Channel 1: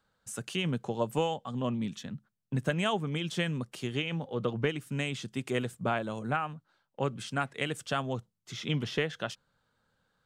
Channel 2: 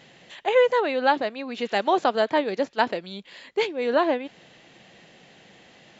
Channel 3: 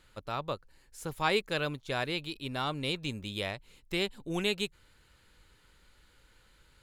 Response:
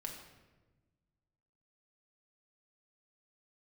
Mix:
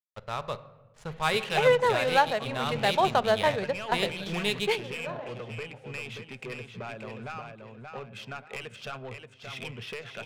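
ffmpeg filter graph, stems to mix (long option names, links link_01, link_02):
-filter_complex "[0:a]acompressor=threshold=-31dB:ratio=6,equalizer=frequency=160:width_type=o:width=0.33:gain=-9,equalizer=frequency=400:width_type=o:width=0.33:gain=4,equalizer=frequency=2500:width_type=o:width=0.33:gain=10,asoftclip=type=tanh:threshold=-29.5dB,adelay=950,volume=-1dB,asplit=3[link_01][link_02][link_03];[link_02]volume=-10dB[link_04];[link_03]volume=-4dB[link_05];[1:a]adelay=1100,volume=-2.5dB,asplit=2[link_06][link_07];[link_07]volume=-11.5dB[link_08];[2:a]acrusher=bits=6:mix=0:aa=0.5,volume=-0.5dB,asplit=3[link_09][link_10][link_11];[link_10]volume=-4dB[link_12];[link_11]apad=whole_len=313021[link_13];[link_06][link_13]sidechaingate=range=-33dB:threshold=-58dB:ratio=16:detection=peak[link_14];[3:a]atrim=start_sample=2205[link_15];[link_04][link_08][link_12]amix=inputs=3:normalize=0[link_16];[link_16][link_15]afir=irnorm=-1:irlink=0[link_17];[link_05]aecho=0:1:579|1158|1737|2316|2895:1|0.32|0.102|0.0328|0.0105[link_18];[link_01][link_14][link_09][link_17][link_18]amix=inputs=5:normalize=0,equalizer=frequency=300:width=2.6:gain=-12.5,adynamicsmooth=sensitivity=7:basefreq=2800"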